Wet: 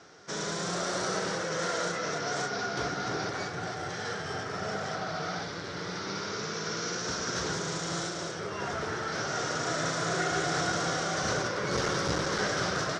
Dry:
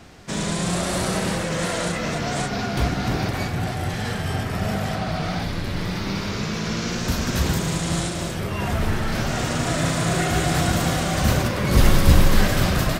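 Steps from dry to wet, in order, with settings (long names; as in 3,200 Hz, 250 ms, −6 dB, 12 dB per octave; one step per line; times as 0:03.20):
hard clipping −8.5 dBFS, distortion −21 dB
loudspeaker in its box 190–6,900 Hz, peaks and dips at 230 Hz −10 dB, 440 Hz +6 dB, 1,400 Hz +8 dB, 2,600 Hz −6 dB, 5,700 Hz +9 dB
level −7.5 dB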